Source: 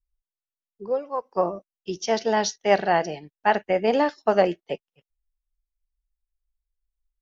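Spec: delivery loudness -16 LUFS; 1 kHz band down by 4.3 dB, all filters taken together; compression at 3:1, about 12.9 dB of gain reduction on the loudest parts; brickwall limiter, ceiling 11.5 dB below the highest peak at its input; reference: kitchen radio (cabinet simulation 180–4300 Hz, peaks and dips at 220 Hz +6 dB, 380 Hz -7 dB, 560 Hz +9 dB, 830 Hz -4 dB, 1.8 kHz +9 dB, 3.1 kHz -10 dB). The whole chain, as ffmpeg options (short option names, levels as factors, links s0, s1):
-af "equalizer=f=1000:t=o:g=-4,acompressor=threshold=0.0251:ratio=3,alimiter=level_in=1.78:limit=0.0631:level=0:latency=1,volume=0.562,highpass=180,equalizer=f=220:t=q:w=4:g=6,equalizer=f=380:t=q:w=4:g=-7,equalizer=f=560:t=q:w=4:g=9,equalizer=f=830:t=q:w=4:g=-4,equalizer=f=1800:t=q:w=4:g=9,equalizer=f=3100:t=q:w=4:g=-10,lowpass=f=4300:w=0.5412,lowpass=f=4300:w=1.3066,volume=11.9"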